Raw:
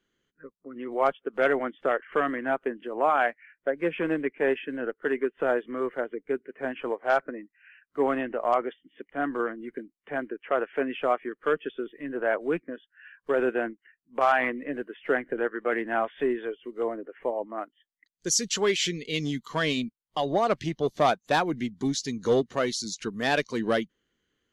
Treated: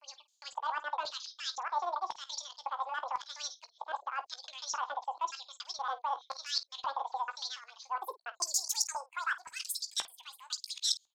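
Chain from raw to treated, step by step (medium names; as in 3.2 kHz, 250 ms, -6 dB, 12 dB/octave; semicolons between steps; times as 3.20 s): slices played last to first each 308 ms, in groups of 3; dynamic bell 1.1 kHz, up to -4 dB, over -40 dBFS, Q 1.4; reverse; compression 5:1, threshold -33 dBFS, peak gain reduction 13 dB; reverse; tilt EQ +3 dB/octave; high-pass sweep 140 Hz -> 1.5 kHz, 18.19–21.53 s; wide varispeed 2.2×; LFO band-pass square 0.95 Hz 920–5600 Hz; early reflections 17 ms -11.5 dB, 51 ms -16.5 dB; trim +7 dB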